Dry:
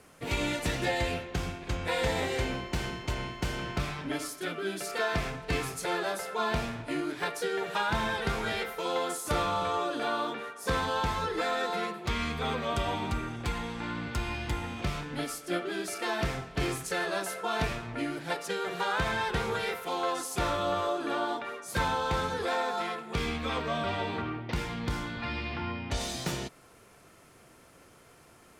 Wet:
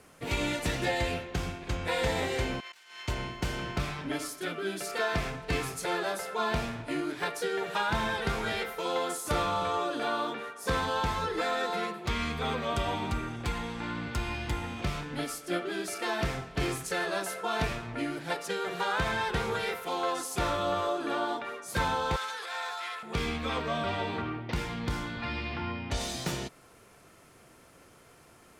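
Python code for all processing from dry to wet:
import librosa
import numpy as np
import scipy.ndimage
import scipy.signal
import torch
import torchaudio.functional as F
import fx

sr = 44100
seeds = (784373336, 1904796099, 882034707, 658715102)

y = fx.chain(x, sr, fx.highpass(hz=1400.0, slope=12),
    fx.over_compress(threshold_db=-47.0, ratio=-0.5), at=(2.6, 3.08))
y = fx.chain(y, sr, fx.highpass(hz=1200.0, slope=12),
    fx.transient(attack_db=-9, sustain_db=6), at=(22.16, 23.03))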